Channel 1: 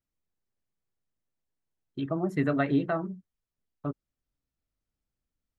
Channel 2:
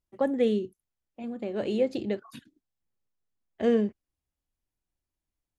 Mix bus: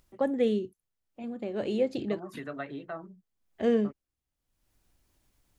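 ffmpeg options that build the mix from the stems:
ffmpeg -i stem1.wav -i stem2.wav -filter_complex "[0:a]acrossover=split=400[link_01][link_02];[link_01]acompressor=threshold=-42dB:ratio=2[link_03];[link_03][link_02]amix=inputs=2:normalize=0,volume=-8.5dB[link_04];[1:a]volume=-1.5dB[link_05];[link_04][link_05]amix=inputs=2:normalize=0,acompressor=mode=upward:threshold=-53dB:ratio=2.5" out.wav

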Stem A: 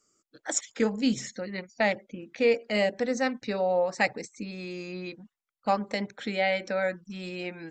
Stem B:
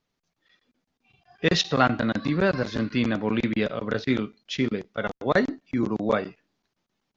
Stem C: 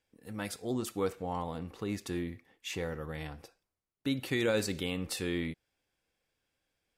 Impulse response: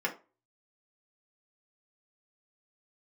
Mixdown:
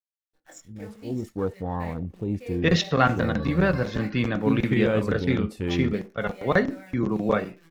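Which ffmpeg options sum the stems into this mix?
-filter_complex "[0:a]acrusher=bits=7:dc=4:mix=0:aa=0.000001,flanger=delay=17.5:depth=6.6:speed=0.63,volume=-18dB,asplit=2[link_01][link_02];[link_02]volume=-9dB[link_03];[1:a]equalizer=frequency=4900:width_type=o:width=0.77:gain=-3,adelay=1200,volume=-3dB,asplit=2[link_04][link_05];[link_05]volume=-12.5dB[link_06];[2:a]afwtdn=0.0126,dynaudnorm=framelen=120:gausssize=13:maxgain=9dB,adelay=400,volume=-6dB[link_07];[3:a]atrim=start_sample=2205[link_08];[link_03][link_06]amix=inputs=2:normalize=0[link_09];[link_09][link_08]afir=irnorm=-1:irlink=0[link_10];[link_01][link_04][link_07][link_10]amix=inputs=4:normalize=0,lowshelf=frequency=200:gain=10.5"

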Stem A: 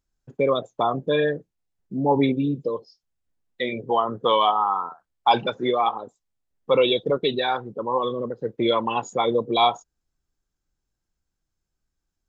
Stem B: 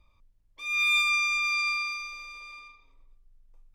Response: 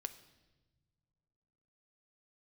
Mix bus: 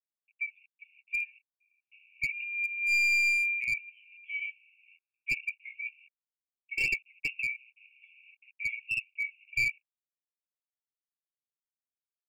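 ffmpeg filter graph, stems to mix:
-filter_complex "[0:a]equalizer=frequency=1900:width=2.8:gain=8,acrusher=bits=6:mix=0:aa=0.5,volume=-1.5dB,asplit=2[link_01][link_02];[1:a]adelay=1600,volume=-1dB[link_03];[link_02]apad=whole_len=235510[link_04];[link_03][link_04]sidechaincompress=threshold=-42dB:ratio=5:attack=5.3:release=133[link_05];[link_01][link_05]amix=inputs=2:normalize=0,dynaudnorm=framelen=160:gausssize=13:maxgain=7dB,asuperpass=centerf=2500:order=12:qfactor=4.5,aeval=exprs='clip(val(0),-1,0.0501)':channel_layout=same"

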